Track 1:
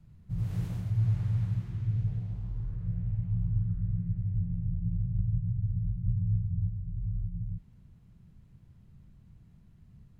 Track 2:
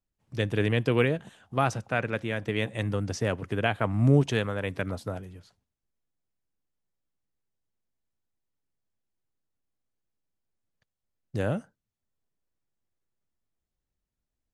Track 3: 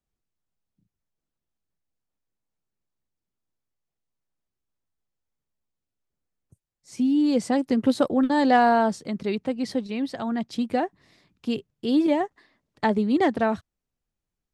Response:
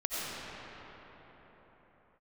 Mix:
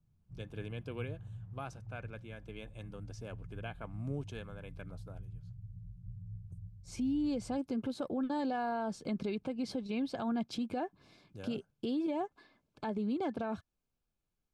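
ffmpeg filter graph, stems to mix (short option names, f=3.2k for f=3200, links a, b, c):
-filter_complex "[0:a]lowpass=1.2k,volume=-17.5dB[a];[1:a]volume=-18dB[b];[2:a]acompressor=threshold=-29dB:ratio=5,highshelf=f=5.4k:g=-6.5,volume=-1dB[c];[b][c]amix=inputs=2:normalize=0,asuperstop=centerf=1900:order=20:qfactor=6.7,alimiter=level_in=4dB:limit=-24dB:level=0:latency=1:release=44,volume=-4dB,volume=0dB[d];[a][d]amix=inputs=2:normalize=0"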